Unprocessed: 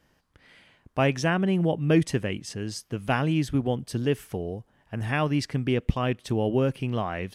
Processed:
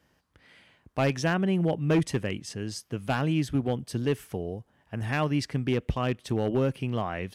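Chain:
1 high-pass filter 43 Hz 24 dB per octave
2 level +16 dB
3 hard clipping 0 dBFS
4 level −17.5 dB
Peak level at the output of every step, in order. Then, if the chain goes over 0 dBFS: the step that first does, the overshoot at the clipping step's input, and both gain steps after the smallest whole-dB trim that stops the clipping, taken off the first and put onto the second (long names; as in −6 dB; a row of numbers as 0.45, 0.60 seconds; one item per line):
−8.5, +7.5, 0.0, −17.5 dBFS
step 2, 7.5 dB
step 2 +8 dB, step 4 −9.5 dB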